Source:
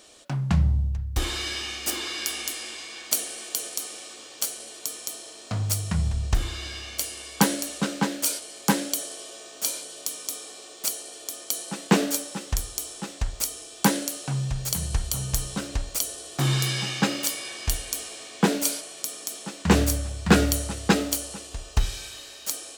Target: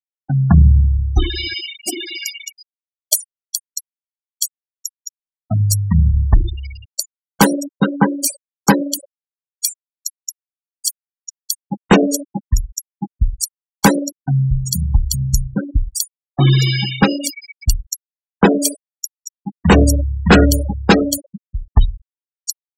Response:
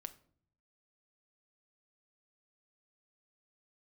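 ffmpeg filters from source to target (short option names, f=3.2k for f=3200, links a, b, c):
-af "afftfilt=real='re*gte(hypot(re,im),0.0794)':imag='im*gte(hypot(re,im),0.0794)':win_size=1024:overlap=0.75,apsyclip=13.5dB,adynamicequalizer=threshold=0.02:dfrequency=2800:dqfactor=0.7:tfrequency=2800:tqfactor=0.7:attack=5:release=100:ratio=0.375:range=2:mode=cutabove:tftype=highshelf,volume=-1.5dB"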